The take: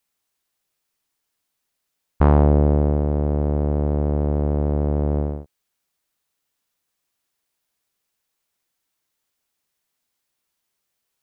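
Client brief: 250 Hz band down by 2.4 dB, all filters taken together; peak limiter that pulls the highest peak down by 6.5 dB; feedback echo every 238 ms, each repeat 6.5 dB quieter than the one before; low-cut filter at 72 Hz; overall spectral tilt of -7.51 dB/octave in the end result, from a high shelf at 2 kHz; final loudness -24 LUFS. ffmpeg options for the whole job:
-af "highpass=72,equalizer=f=250:t=o:g=-3,highshelf=f=2000:g=-8,alimiter=limit=0.355:level=0:latency=1,aecho=1:1:238|476|714|952|1190|1428:0.473|0.222|0.105|0.0491|0.0231|0.0109,volume=0.944"

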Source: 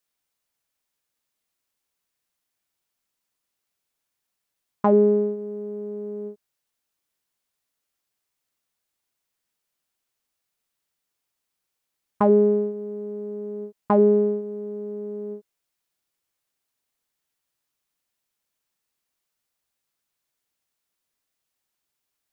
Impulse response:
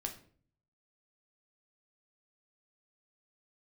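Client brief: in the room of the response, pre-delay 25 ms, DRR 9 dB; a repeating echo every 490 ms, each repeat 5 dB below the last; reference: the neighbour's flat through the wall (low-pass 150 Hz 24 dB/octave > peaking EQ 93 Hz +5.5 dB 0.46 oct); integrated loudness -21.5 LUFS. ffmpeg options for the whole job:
-filter_complex "[0:a]aecho=1:1:490|980|1470|1960|2450|2940|3430:0.562|0.315|0.176|0.0988|0.0553|0.031|0.0173,asplit=2[s0][s1];[1:a]atrim=start_sample=2205,adelay=25[s2];[s1][s2]afir=irnorm=-1:irlink=0,volume=0.376[s3];[s0][s3]amix=inputs=2:normalize=0,lowpass=f=150:w=0.5412,lowpass=f=150:w=1.3066,equalizer=f=93:t=o:w=0.46:g=5.5,volume=5.96"

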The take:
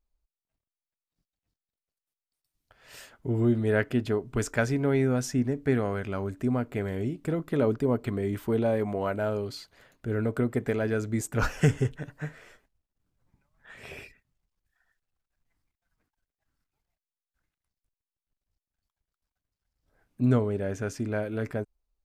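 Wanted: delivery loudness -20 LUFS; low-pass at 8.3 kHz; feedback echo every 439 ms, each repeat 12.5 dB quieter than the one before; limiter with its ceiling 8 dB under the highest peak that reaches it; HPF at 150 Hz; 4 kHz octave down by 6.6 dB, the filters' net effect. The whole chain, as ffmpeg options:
-af "highpass=150,lowpass=8300,equalizer=f=4000:t=o:g=-9,alimiter=limit=0.126:level=0:latency=1,aecho=1:1:439|878|1317:0.237|0.0569|0.0137,volume=3.55"

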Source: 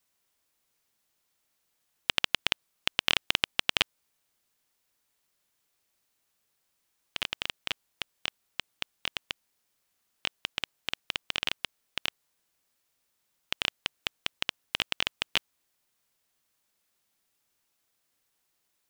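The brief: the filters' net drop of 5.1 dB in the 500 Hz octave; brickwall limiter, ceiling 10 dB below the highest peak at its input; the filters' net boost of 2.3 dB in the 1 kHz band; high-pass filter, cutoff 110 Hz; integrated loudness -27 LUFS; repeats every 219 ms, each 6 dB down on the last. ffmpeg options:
-af "highpass=110,equalizer=f=500:t=o:g=-8.5,equalizer=f=1000:t=o:g=5,alimiter=limit=0.224:level=0:latency=1,aecho=1:1:219|438|657|876|1095|1314:0.501|0.251|0.125|0.0626|0.0313|0.0157,volume=3.35"

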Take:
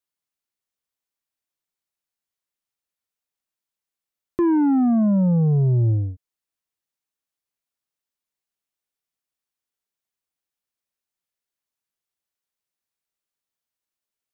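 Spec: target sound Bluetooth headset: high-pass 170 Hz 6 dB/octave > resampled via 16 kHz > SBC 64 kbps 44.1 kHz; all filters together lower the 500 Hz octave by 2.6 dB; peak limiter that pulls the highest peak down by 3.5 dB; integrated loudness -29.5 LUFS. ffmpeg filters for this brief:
-af "equalizer=f=500:t=o:g=-3,alimiter=limit=0.112:level=0:latency=1,highpass=f=170:p=1,aresample=16000,aresample=44100,volume=0.631" -ar 44100 -c:a sbc -b:a 64k

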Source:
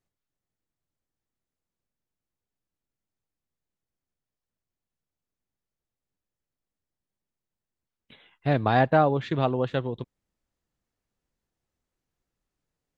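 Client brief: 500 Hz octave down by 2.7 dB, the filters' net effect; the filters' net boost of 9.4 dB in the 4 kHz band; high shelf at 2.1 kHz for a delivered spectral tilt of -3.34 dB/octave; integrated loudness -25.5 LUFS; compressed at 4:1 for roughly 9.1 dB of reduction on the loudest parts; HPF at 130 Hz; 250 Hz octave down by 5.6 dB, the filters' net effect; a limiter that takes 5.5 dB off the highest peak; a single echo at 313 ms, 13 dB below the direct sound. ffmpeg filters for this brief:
-af "highpass=130,equalizer=f=250:t=o:g=-6,equalizer=f=500:t=o:g=-3,highshelf=f=2100:g=7,equalizer=f=4000:t=o:g=5,acompressor=threshold=0.0447:ratio=4,alimiter=limit=0.106:level=0:latency=1,aecho=1:1:313:0.224,volume=2.66"

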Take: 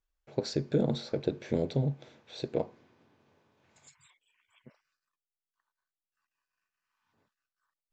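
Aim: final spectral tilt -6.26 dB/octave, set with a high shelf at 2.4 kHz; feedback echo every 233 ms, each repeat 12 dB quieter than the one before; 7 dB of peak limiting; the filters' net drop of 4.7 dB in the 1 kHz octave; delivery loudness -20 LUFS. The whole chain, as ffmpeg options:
-af "equalizer=f=1000:t=o:g=-8,highshelf=f=2400:g=4.5,alimiter=limit=0.0841:level=0:latency=1,aecho=1:1:233|466|699:0.251|0.0628|0.0157,volume=5.96"

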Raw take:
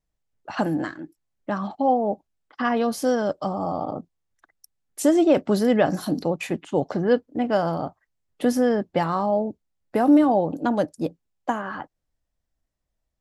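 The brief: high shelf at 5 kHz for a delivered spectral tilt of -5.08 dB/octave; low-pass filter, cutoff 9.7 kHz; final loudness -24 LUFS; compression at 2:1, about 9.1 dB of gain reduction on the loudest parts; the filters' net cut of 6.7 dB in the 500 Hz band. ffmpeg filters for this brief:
-af "lowpass=9700,equalizer=f=500:t=o:g=-8.5,highshelf=f=5000:g=5.5,acompressor=threshold=0.0282:ratio=2,volume=2.66"

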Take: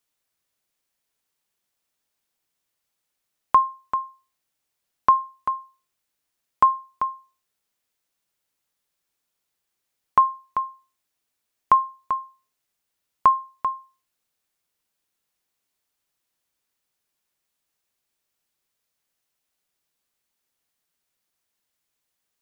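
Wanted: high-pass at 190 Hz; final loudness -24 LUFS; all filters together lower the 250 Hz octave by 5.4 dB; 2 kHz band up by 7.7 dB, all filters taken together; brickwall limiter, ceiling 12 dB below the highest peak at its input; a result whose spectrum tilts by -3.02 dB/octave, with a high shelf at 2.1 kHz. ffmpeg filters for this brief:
-af "highpass=190,equalizer=f=250:t=o:g=-6,equalizer=f=2000:t=o:g=7,highshelf=f=2100:g=6.5,volume=1.26,alimiter=limit=0.251:level=0:latency=1"

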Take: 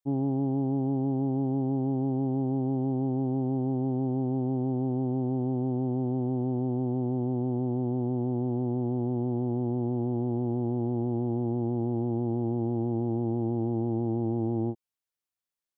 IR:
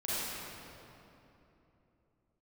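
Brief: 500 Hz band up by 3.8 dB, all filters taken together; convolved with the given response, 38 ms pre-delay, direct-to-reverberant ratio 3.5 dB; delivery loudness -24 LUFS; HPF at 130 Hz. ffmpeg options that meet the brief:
-filter_complex "[0:a]highpass=130,equalizer=f=500:t=o:g=6,asplit=2[s0][s1];[1:a]atrim=start_sample=2205,adelay=38[s2];[s1][s2]afir=irnorm=-1:irlink=0,volume=0.316[s3];[s0][s3]amix=inputs=2:normalize=0,volume=1.19"

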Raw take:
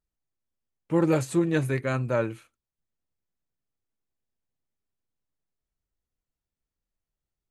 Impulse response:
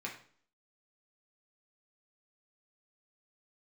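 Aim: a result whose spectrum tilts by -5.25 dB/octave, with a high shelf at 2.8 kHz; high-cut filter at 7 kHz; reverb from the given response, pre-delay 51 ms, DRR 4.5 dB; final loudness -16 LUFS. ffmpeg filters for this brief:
-filter_complex "[0:a]lowpass=7000,highshelf=f=2800:g=6.5,asplit=2[s0][s1];[1:a]atrim=start_sample=2205,adelay=51[s2];[s1][s2]afir=irnorm=-1:irlink=0,volume=0.531[s3];[s0][s3]amix=inputs=2:normalize=0,volume=2.66"

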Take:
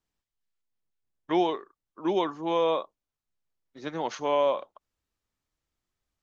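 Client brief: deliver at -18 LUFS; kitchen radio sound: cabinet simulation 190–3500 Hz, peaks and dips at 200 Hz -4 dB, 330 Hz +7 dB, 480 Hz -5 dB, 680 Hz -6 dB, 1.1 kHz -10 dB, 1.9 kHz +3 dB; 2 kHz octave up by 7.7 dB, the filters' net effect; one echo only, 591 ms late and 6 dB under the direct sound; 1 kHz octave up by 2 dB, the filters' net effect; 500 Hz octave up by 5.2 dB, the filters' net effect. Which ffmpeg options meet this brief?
-af "highpass=190,equalizer=f=200:t=q:w=4:g=-4,equalizer=f=330:t=q:w=4:g=7,equalizer=f=480:t=q:w=4:g=-5,equalizer=f=680:t=q:w=4:g=-6,equalizer=f=1100:t=q:w=4:g=-10,equalizer=f=1900:t=q:w=4:g=3,lowpass=f=3500:w=0.5412,lowpass=f=3500:w=1.3066,equalizer=f=500:t=o:g=8,equalizer=f=1000:t=o:g=5,equalizer=f=2000:t=o:g=7,aecho=1:1:591:0.501,volume=1.88"

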